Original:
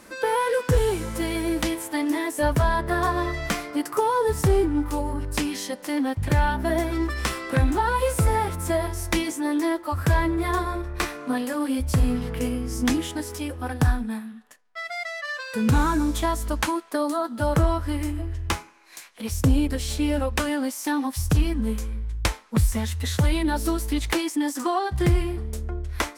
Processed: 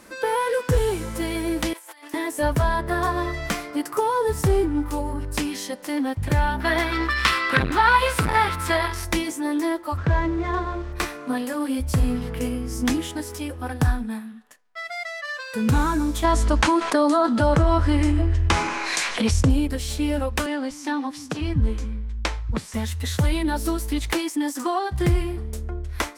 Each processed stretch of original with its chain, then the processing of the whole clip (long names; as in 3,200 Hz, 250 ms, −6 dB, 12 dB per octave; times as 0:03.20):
0:01.73–0:02.14: high-pass filter 940 Hz + compressor whose output falls as the input rises −45 dBFS
0:06.60–0:09.05: flat-topped bell 2,200 Hz +12 dB 2.6 octaves + saturating transformer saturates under 970 Hz
0:09.96–0:10.92: running median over 9 samples + background noise pink −47 dBFS + high-frequency loss of the air 120 metres
0:16.24–0:19.50: Bessel low-pass filter 6,600 Hz, order 6 + envelope flattener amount 70%
0:20.46–0:22.74: low-pass filter 5,800 Hz + multiband delay without the direct sound highs, lows 240 ms, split 190 Hz
whole clip: no processing